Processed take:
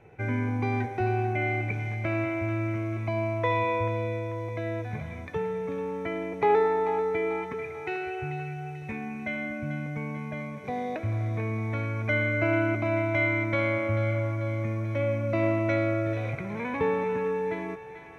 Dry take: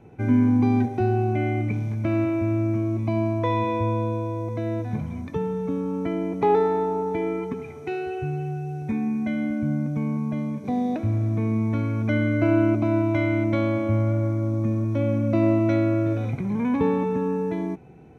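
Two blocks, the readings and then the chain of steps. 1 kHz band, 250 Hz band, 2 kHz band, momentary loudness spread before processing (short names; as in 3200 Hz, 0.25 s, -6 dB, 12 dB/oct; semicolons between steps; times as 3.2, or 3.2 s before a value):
-1.5 dB, -9.5 dB, +5.0 dB, 9 LU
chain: ten-band EQ 250 Hz -10 dB, 500 Hz +5 dB, 2000 Hz +10 dB; thinning echo 0.44 s, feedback 59%, high-pass 870 Hz, level -9 dB; gain -4 dB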